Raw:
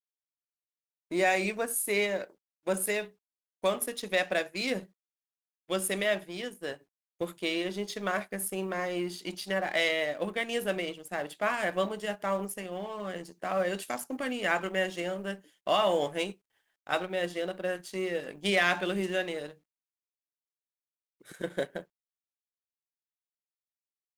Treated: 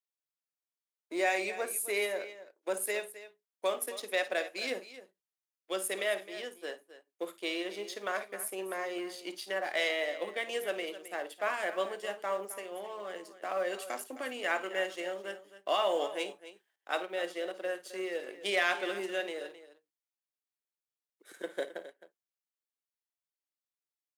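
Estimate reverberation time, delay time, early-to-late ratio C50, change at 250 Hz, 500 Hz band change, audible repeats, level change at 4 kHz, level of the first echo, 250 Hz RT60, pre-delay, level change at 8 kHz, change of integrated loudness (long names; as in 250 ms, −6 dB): no reverb audible, 53 ms, no reverb audible, −8.0 dB, −3.5 dB, 2, −3.0 dB, −15.0 dB, no reverb audible, no reverb audible, −3.0 dB, −3.5 dB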